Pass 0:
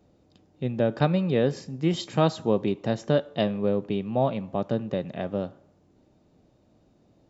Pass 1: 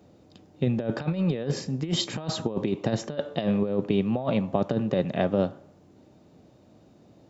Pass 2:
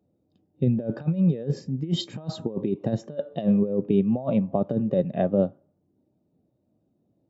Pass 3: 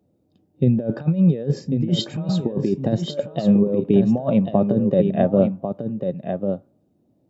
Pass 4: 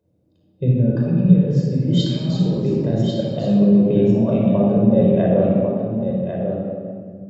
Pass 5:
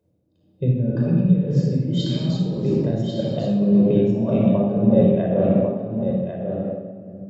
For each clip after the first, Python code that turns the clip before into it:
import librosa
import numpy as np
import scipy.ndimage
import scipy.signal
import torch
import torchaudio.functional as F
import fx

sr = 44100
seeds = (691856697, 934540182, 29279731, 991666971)

y1 = scipy.signal.sosfilt(scipy.signal.butter(2, 79.0, 'highpass', fs=sr, output='sos'), x)
y1 = fx.over_compress(y1, sr, threshold_db=-27.0, ratio=-0.5)
y1 = F.gain(torch.from_numpy(y1), 3.0).numpy()
y2 = fx.spectral_expand(y1, sr, expansion=1.5)
y3 = y2 + 10.0 ** (-7.0 / 20.0) * np.pad(y2, (int(1095 * sr / 1000.0), 0))[:len(y2)]
y3 = F.gain(torch.from_numpy(y3), 5.0).numpy()
y4 = fx.room_shoebox(y3, sr, seeds[0], volume_m3=3400.0, walls='mixed', distance_m=5.1)
y4 = F.gain(torch.from_numpy(y4), -6.5).numpy()
y5 = y4 * (1.0 - 0.47 / 2.0 + 0.47 / 2.0 * np.cos(2.0 * np.pi * 1.8 * (np.arange(len(y4)) / sr)))